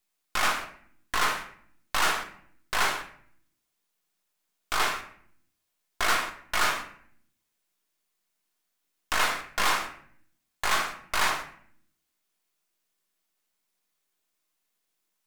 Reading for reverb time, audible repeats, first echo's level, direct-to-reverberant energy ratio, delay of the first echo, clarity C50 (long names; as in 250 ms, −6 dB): 0.60 s, no echo audible, no echo audible, 3.0 dB, no echo audible, 10.0 dB